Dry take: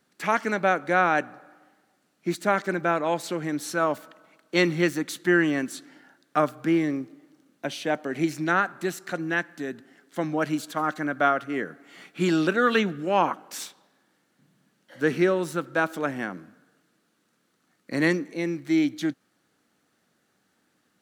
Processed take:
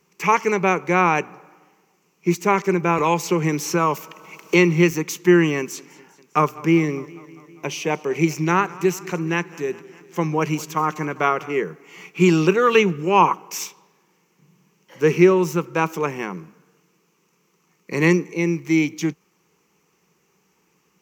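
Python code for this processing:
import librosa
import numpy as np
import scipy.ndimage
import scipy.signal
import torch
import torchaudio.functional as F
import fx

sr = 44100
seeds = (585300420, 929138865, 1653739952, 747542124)

y = fx.band_squash(x, sr, depth_pct=70, at=(2.98, 4.91))
y = fx.echo_warbled(y, sr, ms=201, feedback_pct=66, rate_hz=2.8, cents=61, wet_db=-21, at=(5.58, 11.6))
y = fx.ripple_eq(y, sr, per_octave=0.77, db=14)
y = y * 10.0 ** (4.0 / 20.0)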